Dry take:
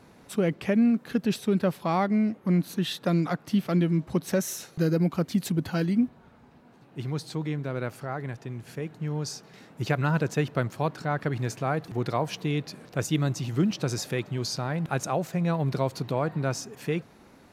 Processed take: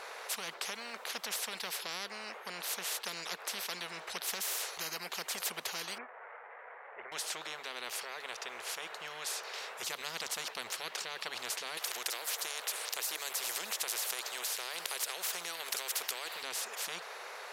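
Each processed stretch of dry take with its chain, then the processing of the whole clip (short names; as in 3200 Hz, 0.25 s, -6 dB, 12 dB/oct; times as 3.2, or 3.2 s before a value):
5.98–7.12 switching spikes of -32 dBFS + elliptic low-pass 2000 Hz, stop band 60 dB + upward expander, over -38 dBFS
11.77–16.43 tilt +3.5 dB/oct + compressor 2:1, threshold -31 dBFS
whole clip: elliptic high-pass 470 Hz, stop band 40 dB; high shelf 7700 Hz -6.5 dB; spectral compressor 10:1; gain +4 dB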